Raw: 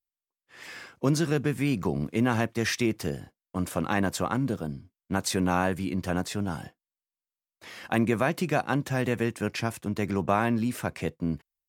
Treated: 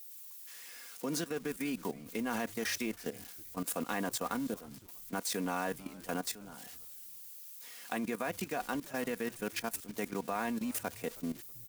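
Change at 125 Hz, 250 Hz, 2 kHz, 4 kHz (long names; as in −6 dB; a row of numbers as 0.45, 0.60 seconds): −18.5, −10.0, −8.0, −6.0 decibels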